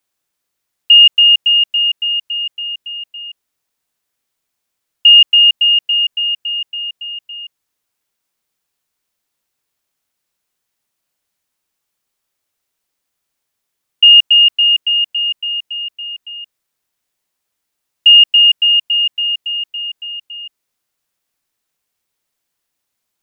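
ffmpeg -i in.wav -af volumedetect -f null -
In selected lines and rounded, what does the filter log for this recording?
mean_volume: -16.7 dB
max_volume: -1.4 dB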